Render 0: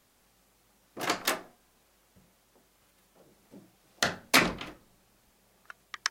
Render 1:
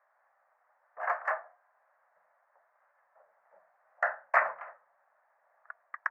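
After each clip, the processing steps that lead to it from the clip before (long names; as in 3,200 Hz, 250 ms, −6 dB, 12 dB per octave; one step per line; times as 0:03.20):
elliptic band-pass filter 610–1,800 Hz, stop band 40 dB
level +2.5 dB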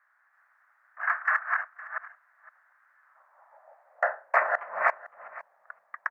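delay that plays each chunk backwards 330 ms, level −0.5 dB
high-pass filter sweep 1,500 Hz → 190 Hz, 0:02.98–0:04.88
single-tap delay 511 ms −19 dB
level +1 dB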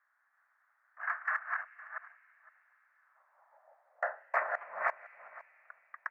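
on a send at −19 dB: high-pass with resonance 2,500 Hz, resonance Q 3.3 + convolution reverb RT60 4.5 s, pre-delay 118 ms
on the sum: level −8 dB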